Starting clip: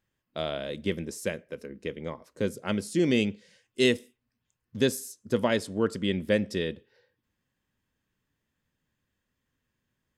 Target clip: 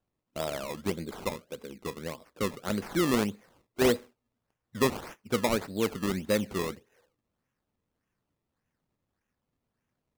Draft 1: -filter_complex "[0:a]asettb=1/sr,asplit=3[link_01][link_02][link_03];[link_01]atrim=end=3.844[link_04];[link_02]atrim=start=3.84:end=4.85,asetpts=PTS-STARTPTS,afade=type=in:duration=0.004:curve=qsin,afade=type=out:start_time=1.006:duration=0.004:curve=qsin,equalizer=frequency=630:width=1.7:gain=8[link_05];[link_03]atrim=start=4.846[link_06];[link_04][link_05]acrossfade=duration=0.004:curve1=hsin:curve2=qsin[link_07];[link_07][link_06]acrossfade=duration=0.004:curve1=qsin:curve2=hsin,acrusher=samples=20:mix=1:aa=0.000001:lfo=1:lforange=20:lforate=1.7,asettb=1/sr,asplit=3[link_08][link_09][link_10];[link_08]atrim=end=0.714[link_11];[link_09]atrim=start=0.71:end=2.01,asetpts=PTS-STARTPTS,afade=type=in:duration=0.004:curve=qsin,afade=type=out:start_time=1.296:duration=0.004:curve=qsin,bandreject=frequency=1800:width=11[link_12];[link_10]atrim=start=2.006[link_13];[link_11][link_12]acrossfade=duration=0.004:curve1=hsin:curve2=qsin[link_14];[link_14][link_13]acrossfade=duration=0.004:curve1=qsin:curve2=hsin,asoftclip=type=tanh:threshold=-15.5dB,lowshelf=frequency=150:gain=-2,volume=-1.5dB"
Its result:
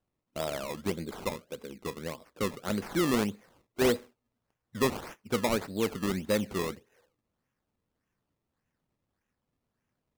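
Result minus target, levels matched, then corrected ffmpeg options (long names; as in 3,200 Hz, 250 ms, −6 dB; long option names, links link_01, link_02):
soft clipping: distortion +10 dB
-filter_complex "[0:a]asettb=1/sr,asplit=3[link_01][link_02][link_03];[link_01]atrim=end=3.844[link_04];[link_02]atrim=start=3.84:end=4.85,asetpts=PTS-STARTPTS,afade=type=in:duration=0.004:curve=qsin,afade=type=out:start_time=1.006:duration=0.004:curve=qsin,equalizer=frequency=630:width=1.7:gain=8[link_05];[link_03]atrim=start=4.846[link_06];[link_04][link_05]acrossfade=duration=0.004:curve1=hsin:curve2=qsin[link_07];[link_07][link_06]acrossfade=duration=0.004:curve1=qsin:curve2=hsin,acrusher=samples=20:mix=1:aa=0.000001:lfo=1:lforange=20:lforate=1.7,asettb=1/sr,asplit=3[link_08][link_09][link_10];[link_08]atrim=end=0.714[link_11];[link_09]atrim=start=0.71:end=2.01,asetpts=PTS-STARTPTS,afade=type=in:duration=0.004:curve=qsin,afade=type=out:start_time=1.296:duration=0.004:curve=qsin,bandreject=frequency=1800:width=11[link_12];[link_10]atrim=start=2.006[link_13];[link_11][link_12]acrossfade=duration=0.004:curve1=hsin:curve2=qsin[link_14];[link_14][link_13]acrossfade=duration=0.004:curve1=qsin:curve2=hsin,asoftclip=type=tanh:threshold=-9dB,lowshelf=frequency=150:gain=-2,volume=-1.5dB"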